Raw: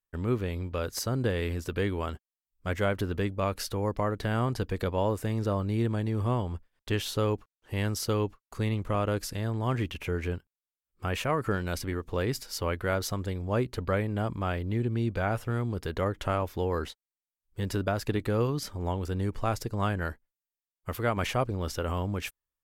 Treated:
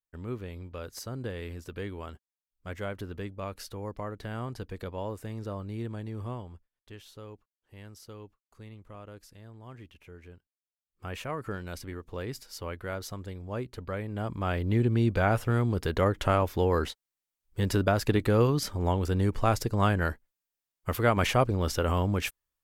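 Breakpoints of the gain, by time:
6.24 s -8 dB
6.91 s -18 dB
10.35 s -18 dB
11.09 s -7 dB
13.95 s -7 dB
14.72 s +4 dB

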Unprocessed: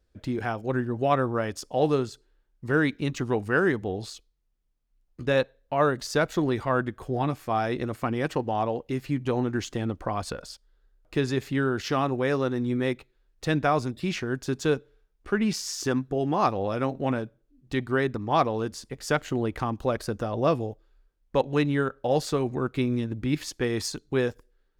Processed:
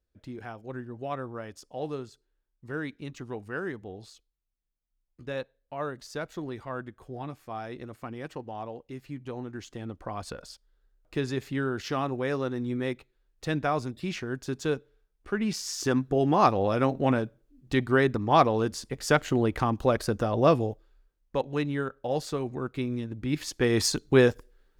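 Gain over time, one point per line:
9.56 s -11 dB
10.44 s -4 dB
15.39 s -4 dB
16.16 s +2.5 dB
20.69 s +2.5 dB
21.4 s -5 dB
23.15 s -5 dB
23.88 s +6 dB

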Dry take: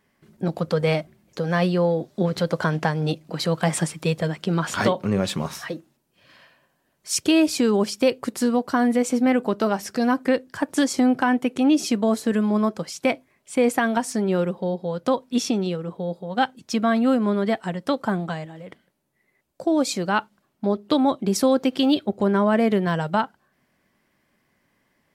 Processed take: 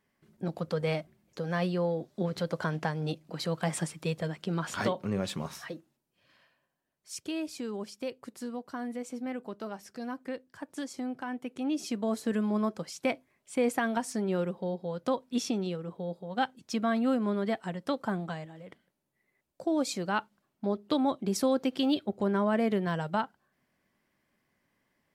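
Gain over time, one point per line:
5.64 s -9 dB
7.15 s -17 dB
11.25 s -17 dB
12.29 s -8 dB

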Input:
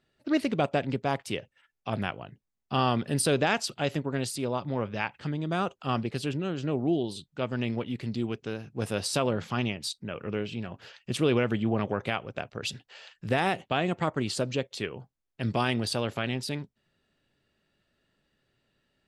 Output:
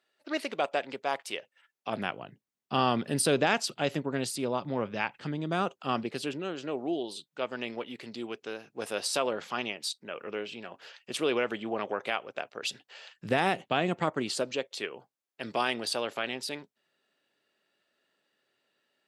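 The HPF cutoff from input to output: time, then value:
1.38 s 540 Hz
2.22 s 170 Hz
5.64 s 170 Hz
6.74 s 410 Hz
12.64 s 410 Hz
13.15 s 160 Hz
13.97 s 160 Hz
14.56 s 390 Hz

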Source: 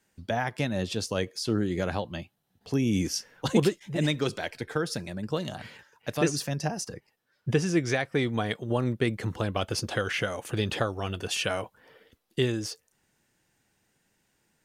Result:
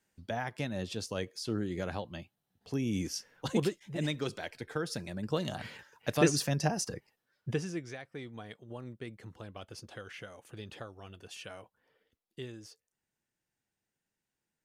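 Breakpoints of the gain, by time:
4.65 s -7 dB
5.66 s 0 dB
6.93 s 0 dB
7.61 s -9 dB
7.92 s -17 dB

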